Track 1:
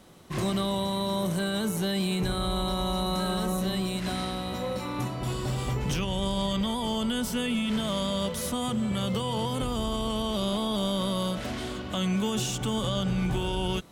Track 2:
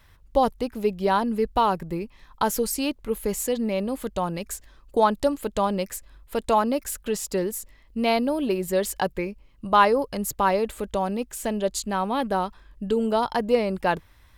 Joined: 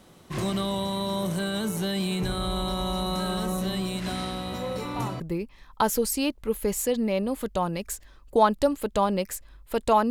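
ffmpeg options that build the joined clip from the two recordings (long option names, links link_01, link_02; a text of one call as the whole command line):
ffmpeg -i cue0.wav -i cue1.wav -filter_complex "[1:a]asplit=2[link_01][link_02];[0:a]apad=whole_dur=10.1,atrim=end=10.1,atrim=end=5.202[link_03];[link_02]atrim=start=1.808:end=6.71[link_04];[link_01]atrim=start=1.35:end=1.81,asetpts=PTS-STARTPTS,volume=-15.5dB,afade=type=in:duration=0.004:curve=hsin,afade=type=out:start_time=0.456:duration=0.004:curve=hsin,adelay=4740[link_05];[link_03][link_04]acrossfade=duration=0.004:curve1=hsin:curve2=hsin[link_06];[link_06][link_05]amix=inputs=2:normalize=0" out.wav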